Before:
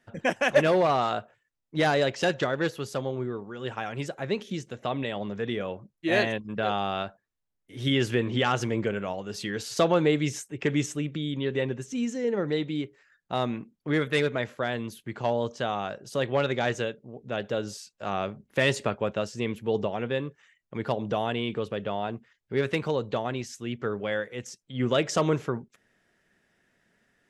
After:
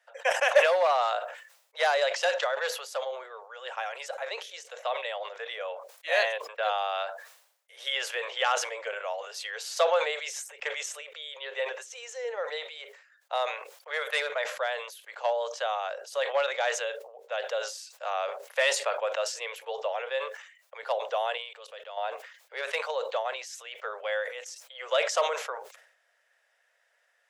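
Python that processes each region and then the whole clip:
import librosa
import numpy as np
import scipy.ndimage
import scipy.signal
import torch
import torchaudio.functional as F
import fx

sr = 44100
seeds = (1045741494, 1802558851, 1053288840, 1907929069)

y = fx.chain(x, sr, fx.high_shelf(hz=2900.0, db=9.0),
    fx.level_steps(step_db=20), at=(21.37, 21.97))
y = scipy.signal.sosfilt(scipy.signal.butter(12, 500.0, 'highpass', fs=sr, output='sos'), y)
y = fx.sustainer(y, sr, db_per_s=82.0)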